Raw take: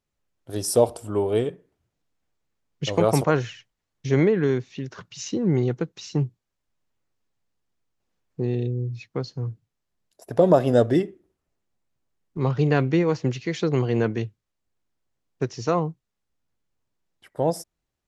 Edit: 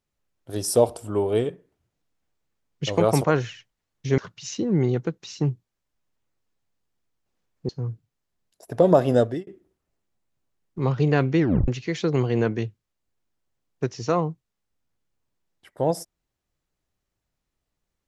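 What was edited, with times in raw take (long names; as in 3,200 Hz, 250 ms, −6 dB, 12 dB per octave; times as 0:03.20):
0:04.18–0:04.92: remove
0:08.43–0:09.28: remove
0:10.74–0:11.06: fade out
0:12.98: tape stop 0.29 s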